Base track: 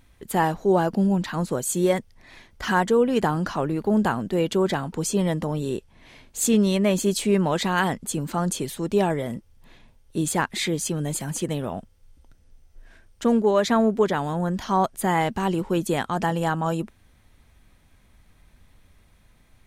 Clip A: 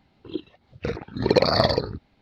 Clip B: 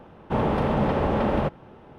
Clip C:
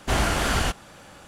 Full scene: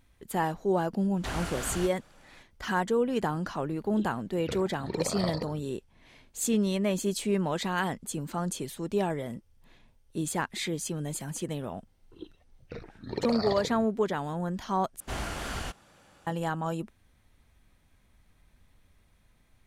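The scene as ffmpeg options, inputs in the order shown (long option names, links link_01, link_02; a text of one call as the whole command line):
ffmpeg -i bed.wav -i cue0.wav -i cue1.wav -i cue2.wav -filter_complex "[3:a]asplit=2[link_01][link_02];[1:a]asplit=2[link_03][link_04];[0:a]volume=-7dB[link_05];[link_03]dynaudnorm=framelen=150:gausssize=5:maxgain=11.5dB[link_06];[link_05]asplit=2[link_07][link_08];[link_07]atrim=end=15.004[link_09];[link_02]atrim=end=1.27,asetpts=PTS-STARTPTS,volume=-12dB[link_10];[link_08]atrim=start=16.266[link_11];[link_01]atrim=end=1.27,asetpts=PTS-STARTPTS,volume=-12.5dB,afade=type=in:duration=0.004:curve=hsin,afade=type=out:start_time=1.266:duration=0.004:curve=hsin,adelay=1160[link_12];[link_06]atrim=end=2.21,asetpts=PTS-STARTPTS,volume=-17.5dB,afade=type=in:duration=0.004:curve=hsin,afade=type=out:start_time=2.206:duration=0.004:curve=hsin,adelay=3640[link_13];[link_04]atrim=end=2.21,asetpts=PTS-STARTPTS,volume=-13.5dB,afade=type=in:duration=0.004:curve=hsin,afade=type=out:start_time=2.206:duration=0.004:curve=hsin,adelay=11870[link_14];[link_09][link_10]acrossfade=duration=0.004:curve1=hsin:curve2=hsin[link_15];[link_15][link_11]acrossfade=duration=0.004:curve1=hsin:curve2=hsin[link_16];[link_16][link_12][link_13][link_14]amix=inputs=4:normalize=0" out.wav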